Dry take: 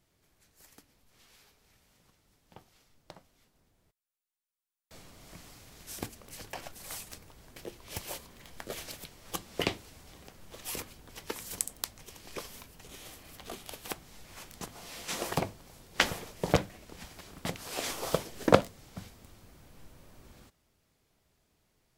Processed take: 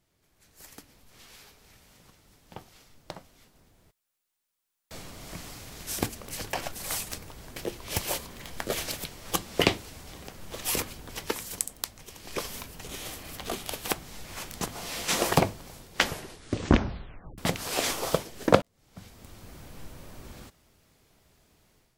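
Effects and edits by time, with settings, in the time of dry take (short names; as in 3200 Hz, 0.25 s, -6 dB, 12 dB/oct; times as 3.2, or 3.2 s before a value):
16.03 tape stop 1.35 s
18.62–19.55 fade in
whole clip: AGC gain up to 10.5 dB; gain -1 dB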